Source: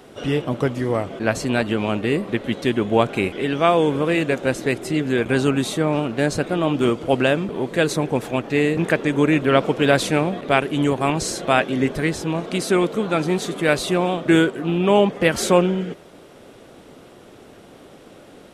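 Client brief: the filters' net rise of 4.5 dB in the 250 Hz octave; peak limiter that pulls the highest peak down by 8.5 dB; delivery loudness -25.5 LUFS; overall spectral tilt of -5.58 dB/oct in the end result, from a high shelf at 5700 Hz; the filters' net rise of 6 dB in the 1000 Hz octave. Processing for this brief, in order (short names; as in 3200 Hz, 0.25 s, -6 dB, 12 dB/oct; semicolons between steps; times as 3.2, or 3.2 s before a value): bell 250 Hz +5.5 dB; bell 1000 Hz +8 dB; high shelf 5700 Hz -6 dB; gain -7 dB; limiter -13 dBFS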